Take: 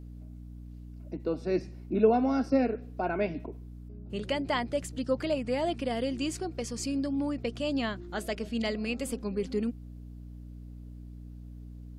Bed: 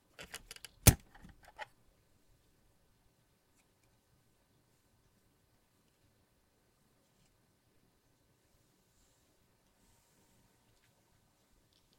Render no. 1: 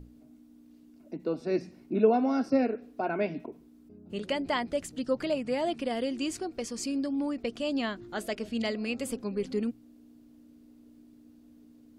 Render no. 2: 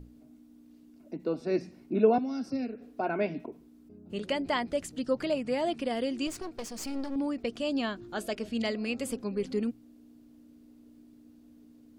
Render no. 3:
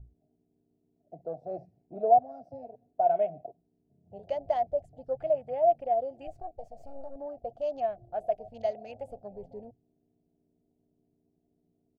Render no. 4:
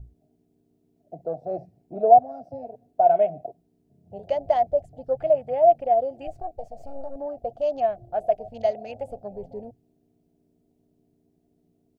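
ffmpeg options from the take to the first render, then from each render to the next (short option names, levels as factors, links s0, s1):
-af "bandreject=f=60:t=h:w=6,bandreject=f=120:t=h:w=6,bandreject=f=180:t=h:w=6"
-filter_complex "[0:a]asettb=1/sr,asplit=3[s0][s1][s2];[s0]atrim=end=2.184[s3];[s1]atrim=start=2.18:end=2.81,asetpts=PTS-STARTPTS,afade=t=in:d=0.004:c=qsin,afade=t=out:st=0.626:d=0.004:c=qsin,acrossover=split=240|3000[s4][s5][s6];[s5]acompressor=threshold=0.00447:ratio=2.5:attack=3.2:release=140:knee=2.83:detection=peak[s7];[s4][s7][s6]amix=inputs=3:normalize=0[s8];[s2]atrim=start=2.806[s9];[s3][s8]acrossfade=d=0.004:c1=hsin:c2=qsin[s10];[s10][s9]acrossfade=d=0.004:c1=qsin:c2=hsin,asettb=1/sr,asplit=3[s11][s12][s13];[s11]atrim=end=6.274[s14];[s12]atrim=start=6.27:end=7.16,asetpts=PTS-STARTPTS,afade=t=in:d=0.004:c=qsin,afade=t=out:st=0.886:d=0.004:c=qsin,aeval=exprs='clip(val(0),-1,0.00708)':c=same[s15];[s13]atrim=start=7.156[s16];[s14][s15]acrossfade=d=0.004:c1=hsin:c2=qsin[s17];[s17][s16]acrossfade=d=0.004:c1=qsin:c2=hsin,asettb=1/sr,asplit=3[s18][s19][s20];[s18]atrim=end=7.694[s21];[s19]atrim=start=7.69:end=8.34,asetpts=PTS-STARTPTS,afade=t=in:d=0.004:c=qsin,afade=t=out:st=0.646:d=0.004:c=qsin,bandreject=f=2000:w=7.4[s22];[s20]atrim=start=8.336[s23];[s21][s22]acrossfade=d=0.004:c1=hsin:c2=qsin[s24];[s24][s23]acrossfade=d=0.004:c1=qsin:c2=hsin"
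-af "afwtdn=0.00891,firequalizer=gain_entry='entry(130,0);entry(220,-21);entry(350,-17);entry(700,12);entry(990,-17)':delay=0.05:min_phase=1"
-af "volume=2.24"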